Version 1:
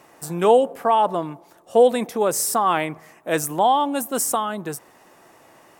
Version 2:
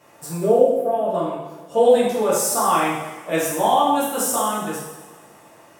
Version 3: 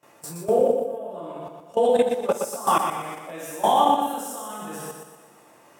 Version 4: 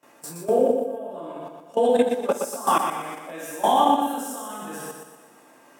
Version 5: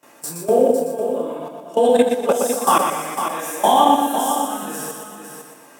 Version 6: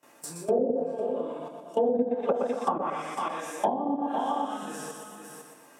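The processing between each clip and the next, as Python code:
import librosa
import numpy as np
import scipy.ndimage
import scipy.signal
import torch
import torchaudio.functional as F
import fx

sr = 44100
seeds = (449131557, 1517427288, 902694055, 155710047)

y1 = fx.spec_box(x, sr, start_s=0.36, length_s=0.73, low_hz=720.0, high_hz=9700.0, gain_db=-17)
y1 = fx.rev_double_slope(y1, sr, seeds[0], early_s=0.96, late_s=2.7, knee_db=-18, drr_db=-9.0)
y1 = F.gain(torch.from_numpy(y1), -7.5).numpy()
y2 = scipy.signal.sosfilt(scipy.signal.butter(2, 120.0, 'highpass', fs=sr, output='sos'), y1)
y2 = fx.level_steps(y2, sr, step_db=18)
y2 = fx.echo_feedback(y2, sr, ms=120, feedback_pct=44, wet_db=-6.0)
y3 = scipy.signal.sosfilt(scipy.signal.butter(2, 130.0, 'highpass', fs=sr, output='sos'), y2)
y3 = fx.low_shelf(y3, sr, hz=180.0, db=-4.5)
y3 = fx.small_body(y3, sr, hz=(260.0, 1600.0), ring_ms=85, db=10)
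y4 = fx.high_shelf(y3, sr, hz=4500.0, db=5.0)
y4 = fx.quant_float(y4, sr, bits=6)
y4 = y4 + 10.0 ** (-8.0 / 20.0) * np.pad(y4, (int(503 * sr / 1000.0), 0))[:len(y4)]
y4 = F.gain(torch.from_numpy(y4), 4.5).numpy()
y5 = fx.env_lowpass_down(y4, sr, base_hz=410.0, full_db=-10.0)
y5 = F.gain(torch.from_numpy(y5), -8.0).numpy()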